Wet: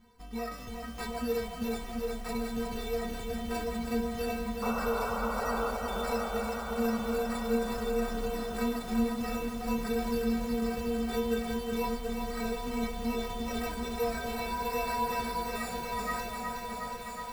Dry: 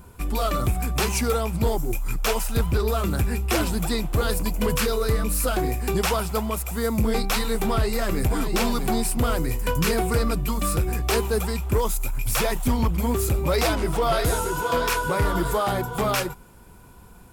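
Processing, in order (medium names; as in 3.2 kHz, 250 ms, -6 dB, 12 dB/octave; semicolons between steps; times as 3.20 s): peaking EQ 7.4 kHz -6 dB 1.1 oct; de-hum 168.4 Hz, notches 31; sample-and-hold 14×; one-sided clip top -23 dBFS; inharmonic resonator 230 Hz, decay 0.32 s, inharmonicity 0.008; painted sound noise, 4.62–5.71 s, 410–1500 Hz -38 dBFS; echo whose repeats swap between lows and highs 728 ms, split 910 Hz, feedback 55%, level -3.5 dB; bit-crushed delay 365 ms, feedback 80%, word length 9-bit, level -5.5 dB; trim +2 dB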